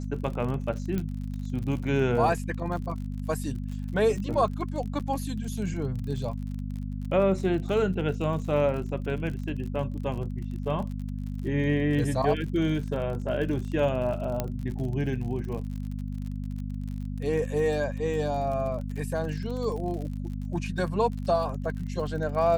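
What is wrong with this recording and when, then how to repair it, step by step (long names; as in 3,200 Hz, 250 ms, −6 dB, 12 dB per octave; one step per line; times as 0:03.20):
surface crackle 48 per second −35 dBFS
mains hum 50 Hz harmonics 5 −33 dBFS
0:00.98: click −18 dBFS
0:04.99–0:05.00: drop-out 7.9 ms
0:14.40: click −13 dBFS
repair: click removal
hum removal 50 Hz, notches 5
repair the gap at 0:04.99, 7.9 ms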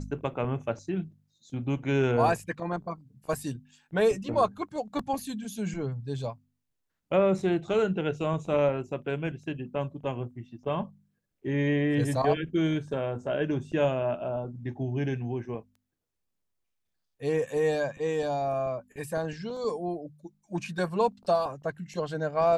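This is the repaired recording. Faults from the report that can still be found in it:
none of them is left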